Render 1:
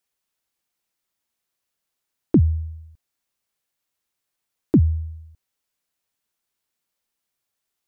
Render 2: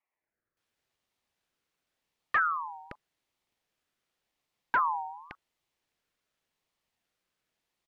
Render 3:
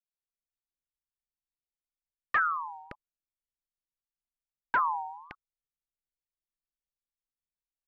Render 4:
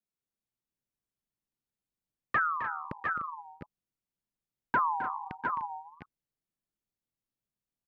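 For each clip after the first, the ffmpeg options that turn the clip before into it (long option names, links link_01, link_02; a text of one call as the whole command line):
ffmpeg -i in.wav -filter_complex "[0:a]acrossover=split=980[link_01][link_02];[link_02]adelay=570[link_03];[link_01][link_03]amix=inputs=2:normalize=0,asplit=2[link_04][link_05];[link_05]highpass=frequency=720:poles=1,volume=28dB,asoftclip=type=tanh:threshold=-7.5dB[link_06];[link_04][link_06]amix=inputs=2:normalize=0,lowpass=frequency=1000:poles=1,volume=-6dB,aeval=exprs='val(0)*sin(2*PI*1200*n/s+1200*0.3/0.89*sin(2*PI*0.89*n/s))':channel_layout=same,volume=-8.5dB" out.wav
ffmpeg -i in.wav -af "anlmdn=0.000631" out.wav
ffmpeg -i in.wav -filter_complex "[0:a]equalizer=frequency=170:width=0.39:gain=15,asplit=2[link_01][link_02];[link_02]aecho=0:1:262|299|697|709:0.299|0.237|0.237|0.531[link_03];[link_01][link_03]amix=inputs=2:normalize=0,volume=-3.5dB" out.wav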